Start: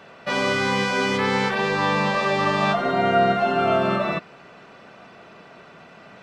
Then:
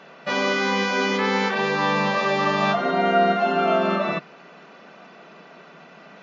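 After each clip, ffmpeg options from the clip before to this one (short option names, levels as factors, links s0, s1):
-af "afftfilt=real='re*between(b*sr/4096,140,7300)':imag='im*between(b*sr/4096,140,7300)':win_size=4096:overlap=0.75"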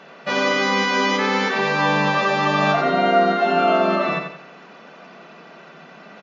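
-af "aecho=1:1:88|176|264|352:0.473|0.175|0.0648|0.024,volume=1.26"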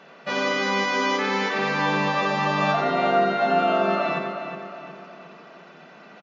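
-filter_complex "[0:a]asplit=2[s0][s1];[s1]adelay=363,lowpass=f=3700:p=1,volume=0.398,asplit=2[s2][s3];[s3]adelay=363,lowpass=f=3700:p=1,volume=0.47,asplit=2[s4][s5];[s5]adelay=363,lowpass=f=3700:p=1,volume=0.47,asplit=2[s6][s7];[s7]adelay=363,lowpass=f=3700:p=1,volume=0.47,asplit=2[s8][s9];[s9]adelay=363,lowpass=f=3700:p=1,volume=0.47[s10];[s0][s2][s4][s6][s8][s10]amix=inputs=6:normalize=0,volume=0.596"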